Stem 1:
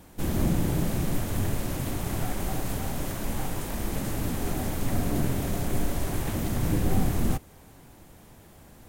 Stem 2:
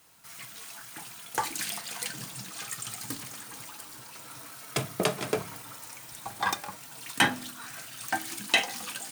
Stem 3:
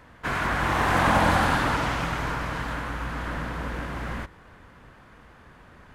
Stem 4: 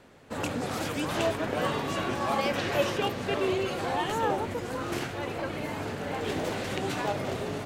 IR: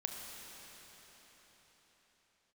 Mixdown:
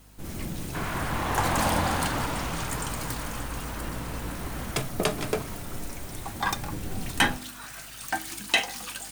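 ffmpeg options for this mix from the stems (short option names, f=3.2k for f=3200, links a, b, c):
-filter_complex "[0:a]volume=-10dB[a];[1:a]volume=0.5dB[b];[2:a]equalizer=f=1.6k:w=1.5:g=-4.5,adelay=500,volume=-4dB[c];[3:a]highpass=1.4k,adelay=550,volume=-15.5dB[d];[a][b][c][d]amix=inputs=4:normalize=0,aeval=exprs='val(0)+0.002*(sin(2*PI*50*n/s)+sin(2*PI*2*50*n/s)/2+sin(2*PI*3*50*n/s)/3+sin(2*PI*4*50*n/s)/4+sin(2*PI*5*50*n/s)/5)':c=same"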